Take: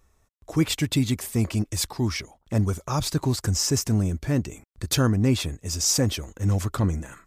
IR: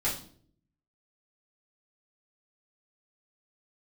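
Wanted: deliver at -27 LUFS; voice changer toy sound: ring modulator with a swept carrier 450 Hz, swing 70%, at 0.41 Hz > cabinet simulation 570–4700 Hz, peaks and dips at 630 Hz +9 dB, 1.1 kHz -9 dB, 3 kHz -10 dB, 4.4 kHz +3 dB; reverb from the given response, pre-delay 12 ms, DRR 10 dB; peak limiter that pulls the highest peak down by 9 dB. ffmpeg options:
-filter_complex "[0:a]alimiter=limit=0.126:level=0:latency=1,asplit=2[s0][s1];[1:a]atrim=start_sample=2205,adelay=12[s2];[s1][s2]afir=irnorm=-1:irlink=0,volume=0.133[s3];[s0][s3]amix=inputs=2:normalize=0,aeval=exprs='val(0)*sin(2*PI*450*n/s+450*0.7/0.41*sin(2*PI*0.41*n/s))':c=same,highpass=570,equalizer=f=630:t=q:w=4:g=9,equalizer=f=1100:t=q:w=4:g=-9,equalizer=f=3000:t=q:w=4:g=-10,equalizer=f=4400:t=q:w=4:g=3,lowpass=f=4700:w=0.5412,lowpass=f=4700:w=1.3066,volume=1.78"

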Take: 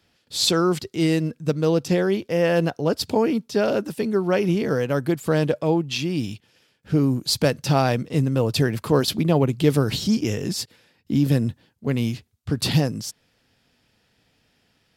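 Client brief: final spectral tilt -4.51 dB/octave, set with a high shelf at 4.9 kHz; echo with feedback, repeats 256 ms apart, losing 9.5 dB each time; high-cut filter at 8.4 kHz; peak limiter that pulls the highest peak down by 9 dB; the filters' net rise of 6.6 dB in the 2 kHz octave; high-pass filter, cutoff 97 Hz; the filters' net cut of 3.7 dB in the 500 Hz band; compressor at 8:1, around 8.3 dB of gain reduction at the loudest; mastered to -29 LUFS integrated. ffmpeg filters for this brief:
-af "highpass=97,lowpass=8400,equalizer=f=500:t=o:g=-5,equalizer=f=2000:t=o:g=7.5,highshelf=f=4900:g=8.5,acompressor=threshold=0.0794:ratio=8,alimiter=limit=0.112:level=0:latency=1,aecho=1:1:256|512|768|1024:0.335|0.111|0.0365|0.012,volume=1.06"

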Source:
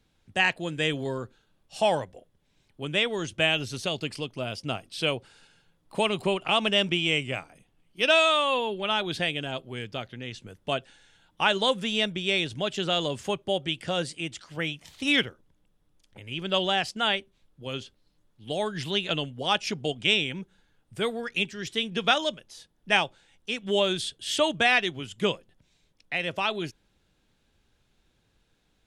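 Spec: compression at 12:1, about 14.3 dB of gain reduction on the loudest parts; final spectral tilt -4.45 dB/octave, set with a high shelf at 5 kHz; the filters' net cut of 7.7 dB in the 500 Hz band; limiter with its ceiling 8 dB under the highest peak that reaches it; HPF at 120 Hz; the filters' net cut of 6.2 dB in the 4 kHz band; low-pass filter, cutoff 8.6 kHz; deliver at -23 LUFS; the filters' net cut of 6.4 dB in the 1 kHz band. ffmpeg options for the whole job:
-af "highpass=120,lowpass=8600,equalizer=f=500:t=o:g=-8.5,equalizer=f=1000:t=o:g=-5,equalizer=f=4000:t=o:g=-6,highshelf=f=5000:g=-5.5,acompressor=threshold=0.0158:ratio=12,volume=9.44,alimiter=limit=0.299:level=0:latency=1"

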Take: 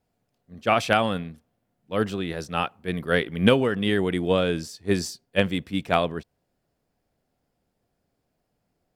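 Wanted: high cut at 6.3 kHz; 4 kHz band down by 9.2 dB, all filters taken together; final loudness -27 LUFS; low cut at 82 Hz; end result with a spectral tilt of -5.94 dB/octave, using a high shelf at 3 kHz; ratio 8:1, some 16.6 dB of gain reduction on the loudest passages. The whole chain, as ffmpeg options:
-af "highpass=82,lowpass=6300,highshelf=f=3000:g=-8,equalizer=f=4000:t=o:g=-6.5,acompressor=threshold=0.0316:ratio=8,volume=2.82"

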